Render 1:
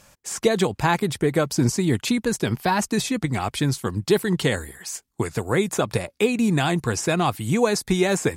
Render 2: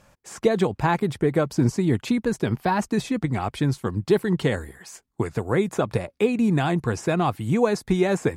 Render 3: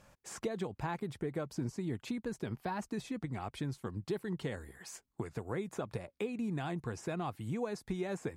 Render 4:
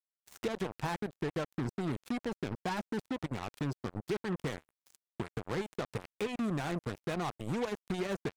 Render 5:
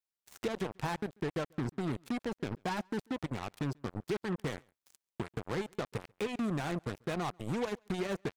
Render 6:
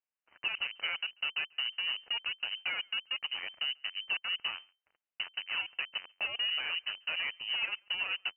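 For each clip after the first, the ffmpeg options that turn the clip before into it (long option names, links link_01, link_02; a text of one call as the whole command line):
ffmpeg -i in.wav -af "highshelf=frequency=2800:gain=-12" out.wav
ffmpeg -i in.wav -af "acompressor=threshold=-37dB:ratio=2,volume=-5.5dB" out.wav
ffmpeg -i in.wav -af "acrusher=bits=5:mix=0:aa=0.5,volume=1.5dB" out.wav
ffmpeg -i in.wav -filter_complex "[0:a]asplit=2[link_01][link_02];[link_02]adelay=139.9,volume=-30dB,highshelf=frequency=4000:gain=-3.15[link_03];[link_01][link_03]amix=inputs=2:normalize=0" out.wav
ffmpeg -i in.wav -af "lowpass=frequency=2600:width_type=q:width=0.5098,lowpass=frequency=2600:width_type=q:width=0.6013,lowpass=frequency=2600:width_type=q:width=0.9,lowpass=frequency=2600:width_type=q:width=2.563,afreqshift=-3100" out.wav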